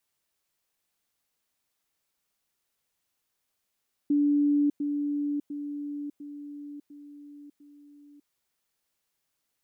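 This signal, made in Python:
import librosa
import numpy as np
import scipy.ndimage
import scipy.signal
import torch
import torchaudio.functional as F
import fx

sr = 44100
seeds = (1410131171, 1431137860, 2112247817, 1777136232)

y = fx.level_ladder(sr, hz=290.0, from_db=-20.0, step_db=-6.0, steps=6, dwell_s=0.6, gap_s=0.1)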